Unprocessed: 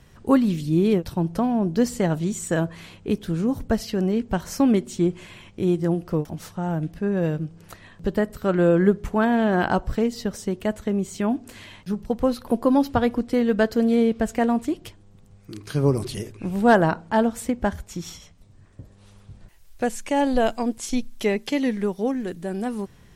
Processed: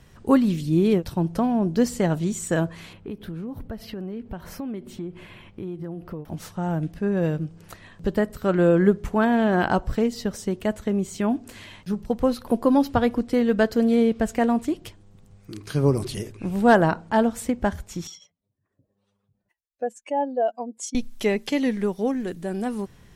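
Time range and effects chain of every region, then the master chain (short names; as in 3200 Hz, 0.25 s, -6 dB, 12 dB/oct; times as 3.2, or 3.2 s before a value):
2.93–6.3 bell 6900 Hz -14.5 dB 1.2 oct + compressor 4:1, threshold -31 dBFS
18.07–20.95 spectral contrast raised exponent 1.9 + HPF 460 Hz
whole clip: dry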